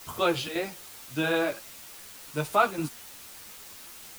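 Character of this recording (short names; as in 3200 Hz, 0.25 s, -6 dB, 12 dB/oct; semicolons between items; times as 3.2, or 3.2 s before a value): chopped level 1.8 Hz, depth 65%, duty 85%; a quantiser's noise floor 8-bit, dither triangular; a shimmering, thickened sound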